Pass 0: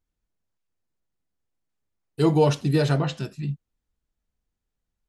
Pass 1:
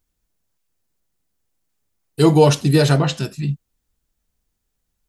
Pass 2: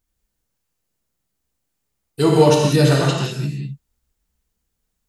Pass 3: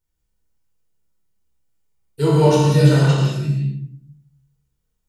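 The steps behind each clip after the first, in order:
treble shelf 5.5 kHz +9.5 dB; trim +6.5 dB
gated-style reverb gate 230 ms flat, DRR -1.5 dB; trim -3 dB
simulated room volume 1000 m³, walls furnished, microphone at 4.6 m; trim -8.5 dB

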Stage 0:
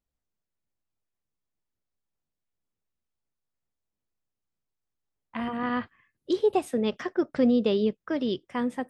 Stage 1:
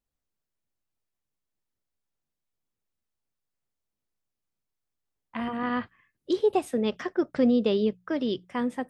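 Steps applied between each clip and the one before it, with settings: hum notches 60/120/180 Hz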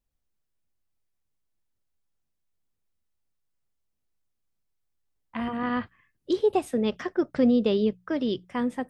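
bass shelf 100 Hz +8.5 dB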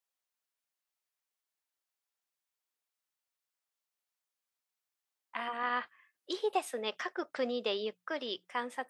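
high-pass 760 Hz 12 dB/octave

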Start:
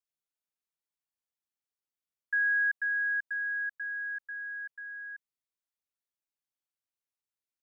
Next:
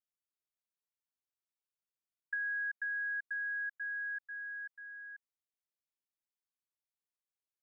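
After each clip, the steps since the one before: dynamic bell 1.6 kHz, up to +6 dB, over -42 dBFS; compression, threshold -27 dBFS, peak gain reduction 7 dB; trim -8 dB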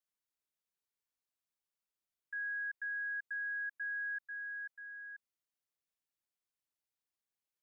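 peak limiter -35.5 dBFS, peak gain reduction 7.5 dB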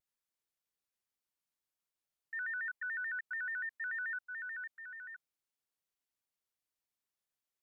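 vibrato with a chosen wave square 6.9 Hz, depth 160 cents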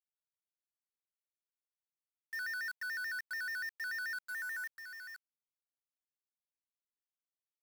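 companded quantiser 4-bit; trim +1 dB

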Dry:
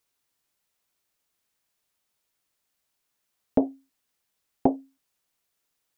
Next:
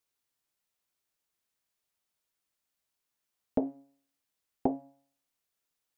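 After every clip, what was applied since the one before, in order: de-hum 138.6 Hz, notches 21; trim -6.5 dB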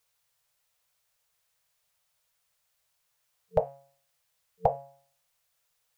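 FFT band-reject 180–450 Hz; trim +9 dB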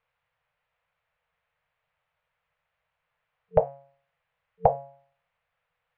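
low-pass 2.5 kHz 24 dB/octave; trim +4.5 dB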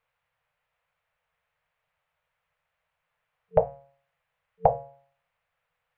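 hum notches 60/120/180/240/300/360/420/480 Hz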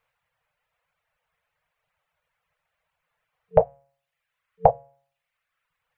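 reverb removal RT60 0.96 s; trim +4 dB

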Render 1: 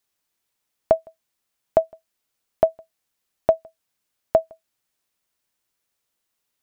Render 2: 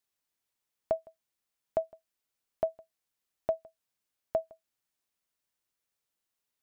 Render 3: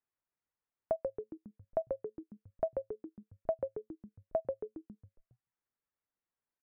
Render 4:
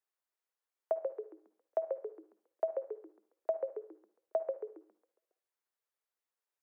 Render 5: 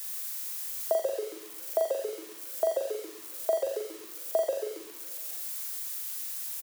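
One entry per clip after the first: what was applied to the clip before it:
peak limiter -10 dBFS, peak gain reduction 5.5 dB; trim -8 dB
low-pass 2 kHz 24 dB/octave; reverb removal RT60 0.98 s; on a send: frequency-shifting echo 137 ms, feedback 55%, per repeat -110 Hz, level -4 dB; on the sum: trim -3 dB
steep high-pass 360 Hz 48 dB/octave; on a send at -12 dB: reverberation RT60 0.50 s, pre-delay 48 ms
zero-crossing glitches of -35 dBFS; bass shelf 350 Hz +8 dB; reverse bouncing-ball echo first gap 40 ms, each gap 1.1×, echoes 5; trim +3 dB

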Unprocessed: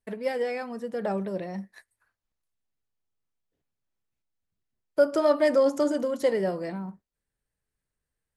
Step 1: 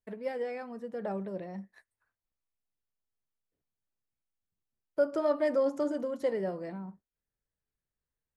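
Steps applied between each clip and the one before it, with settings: treble shelf 3.1 kHz -9 dB; trim -6 dB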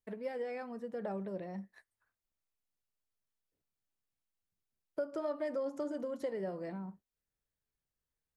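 compression 3:1, threshold -34 dBFS, peak gain reduction 9.5 dB; trim -1.5 dB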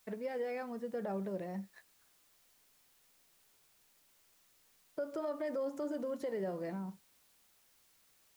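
added noise white -71 dBFS; peak limiter -31.5 dBFS, peak gain reduction 5 dB; trim +1.5 dB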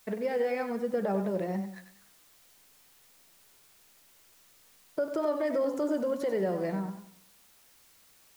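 modulated delay 94 ms, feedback 38%, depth 83 cents, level -9.5 dB; trim +8 dB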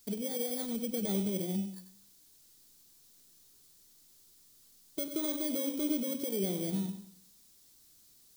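bit-reversed sample order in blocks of 16 samples; high-order bell 1.2 kHz -12 dB 2.9 oct

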